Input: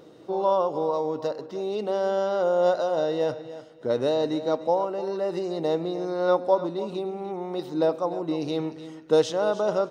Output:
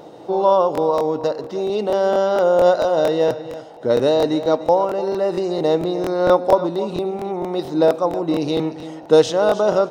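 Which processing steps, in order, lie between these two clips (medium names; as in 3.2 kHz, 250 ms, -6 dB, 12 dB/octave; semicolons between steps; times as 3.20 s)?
band noise 450–870 Hz -51 dBFS; crackling interface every 0.23 s, samples 1024, repeat, from 0.73 s; trim +7.5 dB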